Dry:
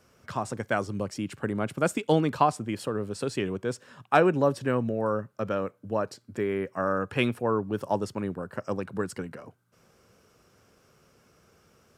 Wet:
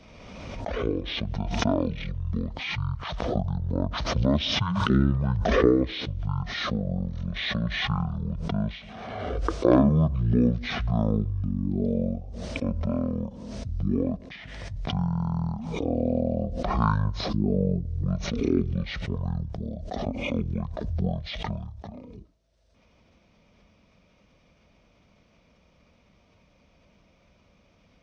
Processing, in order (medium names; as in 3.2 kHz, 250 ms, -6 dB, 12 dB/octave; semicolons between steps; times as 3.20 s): speed mistake 78 rpm record played at 33 rpm; swell ahead of each attack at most 31 dB/s